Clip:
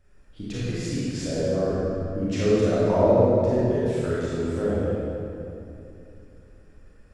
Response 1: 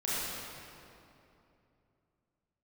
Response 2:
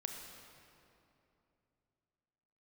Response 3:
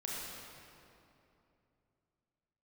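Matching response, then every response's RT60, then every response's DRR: 1; 2.8, 2.9, 2.8 seconds; −10.0, 2.5, −5.5 decibels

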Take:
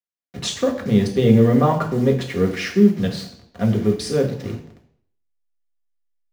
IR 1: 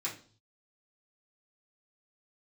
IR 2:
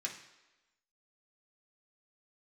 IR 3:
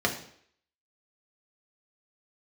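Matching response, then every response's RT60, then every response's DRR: 3; 0.45, 1.1, 0.60 seconds; −7.5, −2.0, 0.0 decibels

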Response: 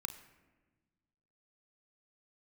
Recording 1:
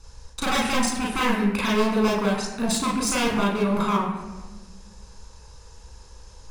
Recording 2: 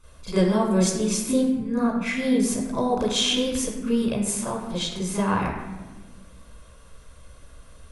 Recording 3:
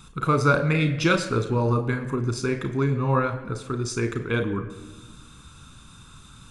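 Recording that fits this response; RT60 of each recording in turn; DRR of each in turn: 3; 1.3, 1.3, 1.3 seconds; −3.5, −9.5, 6.5 decibels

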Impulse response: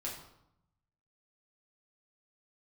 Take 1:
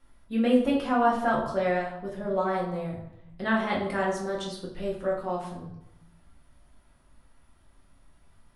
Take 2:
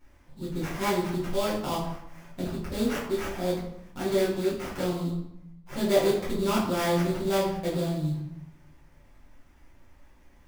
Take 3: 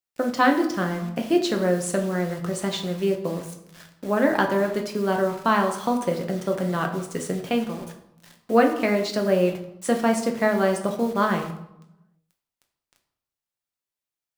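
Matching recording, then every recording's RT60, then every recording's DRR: 1; 0.80, 0.80, 0.80 seconds; −4.5, −8.5, 2.5 decibels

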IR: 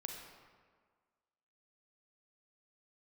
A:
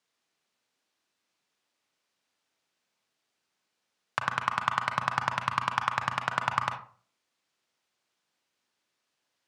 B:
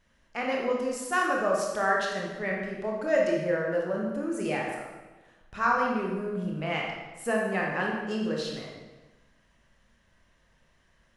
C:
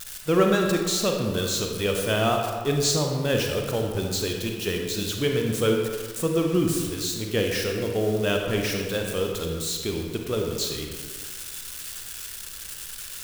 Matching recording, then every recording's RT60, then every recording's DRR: C; 0.45, 1.2, 1.7 seconds; 6.0, −2.0, 1.5 decibels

